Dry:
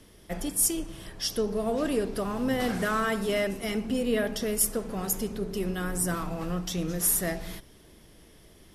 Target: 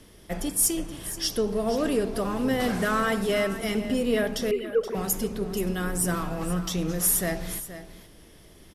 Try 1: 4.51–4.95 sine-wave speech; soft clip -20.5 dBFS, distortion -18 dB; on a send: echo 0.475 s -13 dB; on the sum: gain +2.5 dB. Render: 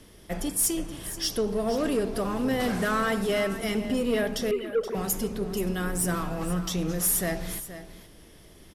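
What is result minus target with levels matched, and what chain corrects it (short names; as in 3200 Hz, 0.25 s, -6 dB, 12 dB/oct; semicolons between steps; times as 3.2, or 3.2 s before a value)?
soft clip: distortion +11 dB
4.51–4.95 sine-wave speech; soft clip -13 dBFS, distortion -29 dB; on a send: echo 0.475 s -13 dB; on the sum: gain +2.5 dB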